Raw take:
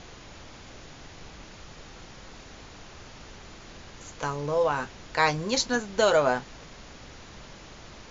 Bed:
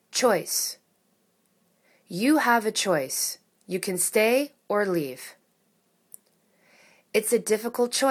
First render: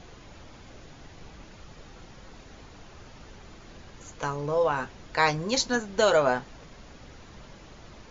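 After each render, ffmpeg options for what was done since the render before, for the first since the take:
ffmpeg -i in.wav -af "afftdn=noise_reduction=6:noise_floor=-47" out.wav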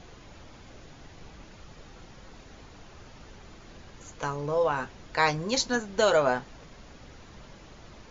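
ffmpeg -i in.wav -af "volume=-1dB" out.wav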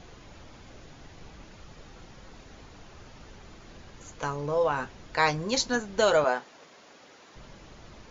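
ffmpeg -i in.wav -filter_complex "[0:a]asettb=1/sr,asplit=3[link_01][link_02][link_03];[link_01]atrim=end=6.244[link_04];[link_02]atrim=start=6.24:end=7.36,asetpts=PTS-STARTPTS,afade=type=in:duration=0.004:curve=qsin,afade=type=out:start_time=1.116:duration=0.004:curve=qsin,highpass=350[link_05];[link_03]atrim=start=7.356[link_06];[link_04][link_05]acrossfade=duration=0.004:curve1=hsin:curve2=qsin[link_07];[link_07][link_06]acrossfade=duration=0.004:curve1=qsin:curve2=hsin" out.wav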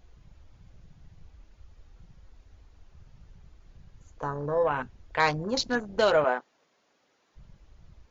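ffmpeg -i in.wav -af "afwtdn=0.0178" out.wav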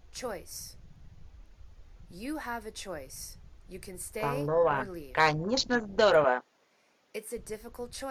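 ffmpeg -i in.wav -i bed.wav -filter_complex "[1:a]volume=-16dB[link_01];[0:a][link_01]amix=inputs=2:normalize=0" out.wav

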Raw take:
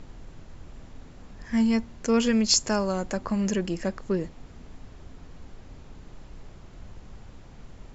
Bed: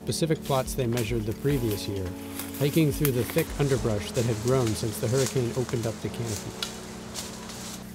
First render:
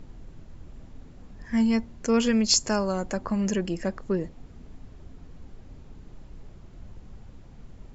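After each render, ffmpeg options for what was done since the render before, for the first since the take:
ffmpeg -i in.wav -af "afftdn=noise_reduction=6:noise_floor=-48" out.wav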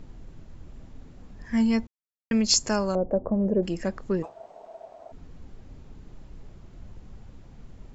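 ffmpeg -i in.wav -filter_complex "[0:a]asettb=1/sr,asplit=3[link_01][link_02][link_03];[link_01]atrim=end=2.954[link_04];[link_02]atrim=start=2.95:end=3.63,asetpts=PTS-STARTPTS,afade=type=in:duration=0.004:curve=qsin,afade=type=out:start_time=0.676:duration=0.004:curve=qsin,lowpass=frequency=560:width_type=q:width=2.7[link_05];[link_03]atrim=start=3.626[link_06];[link_04][link_05]acrossfade=duration=0.004:curve1=hsin:curve2=qsin[link_07];[link_07][link_06]acrossfade=duration=0.004:curve1=qsin:curve2=hsin,asplit=3[link_08][link_09][link_10];[link_08]afade=type=out:start_time=4.22:duration=0.02[link_11];[link_09]aeval=exprs='val(0)*sin(2*PI*660*n/s)':channel_layout=same,afade=type=in:start_time=4.22:duration=0.02,afade=type=out:start_time=5.11:duration=0.02[link_12];[link_10]afade=type=in:start_time=5.11:duration=0.02[link_13];[link_11][link_12][link_13]amix=inputs=3:normalize=0,asplit=3[link_14][link_15][link_16];[link_14]atrim=end=1.87,asetpts=PTS-STARTPTS,afade=type=out:start_time=1.866:duration=0.004:curve=hsin[link_17];[link_15]atrim=start=1.87:end=2.31,asetpts=PTS-STARTPTS,volume=0[link_18];[link_16]atrim=start=2.31,asetpts=PTS-STARTPTS,afade=type=in:duration=0.004:curve=hsin[link_19];[link_17][link_18][link_19]concat=n=3:v=0:a=1" out.wav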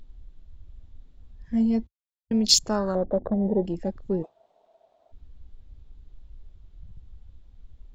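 ffmpeg -i in.wav -af "afwtdn=0.0316,equalizer=frequency=3600:width=2.1:gain=10" out.wav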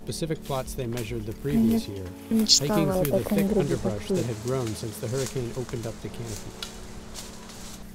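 ffmpeg -i in.wav -i bed.wav -filter_complex "[1:a]volume=-4dB[link_01];[0:a][link_01]amix=inputs=2:normalize=0" out.wav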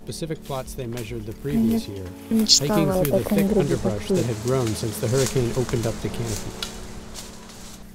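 ffmpeg -i in.wav -af "dynaudnorm=framelen=300:gausssize=13:maxgain=11.5dB" out.wav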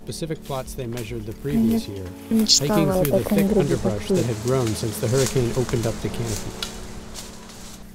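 ffmpeg -i in.wav -af "volume=1dB,alimiter=limit=-3dB:level=0:latency=1" out.wav

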